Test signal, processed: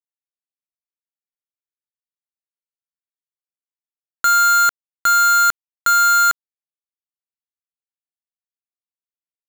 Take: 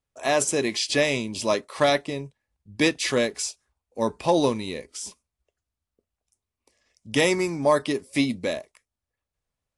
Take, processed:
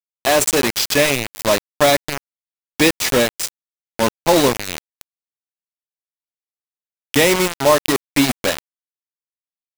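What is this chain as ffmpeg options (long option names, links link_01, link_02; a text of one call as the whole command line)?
ffmpeg -i in.wav -af "acrusher=bits=3:mix=0:aa=0.000001,volume=6dB" out.wav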